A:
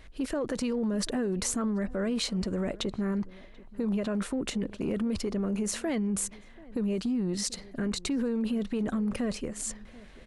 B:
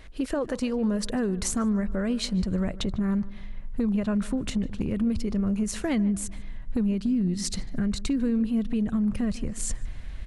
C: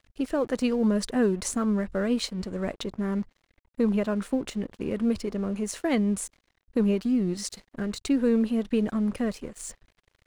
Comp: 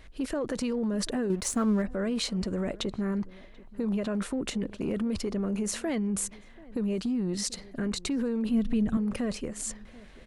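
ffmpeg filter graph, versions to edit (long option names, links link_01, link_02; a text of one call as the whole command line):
ffmpeg -i take0.wav -i take1.wav -i take2.wav -filter_complex "[0:a]asplit=3[link_01][link_02][link_03];[link_01]atrim=end=1.302[link_04];[2:a]atrim=start=1.298:end=1.822[link_05];[link_02]atrim=start=1.818:end=8.492[link_06];[1:a]atrim=start=8.488:end=8.972[link_07];[link_03]atrim=start=8.968[link_08];[link_04][link_05]acrossfade=duration=0.004:curve1=hsin:curve2=hsin[link_09];[link_09][link_06]acrossfade=duration=0.004:curve1=hsin:curve2=hsin[link_10];[link_10][link_07]acrossfade=duration=0.004:curve1=hsin:curve2=hsin[link_11];[link_11][link_08]acrossfade=duration=0.004:curve1=hsin:curve2=hsin" out.wav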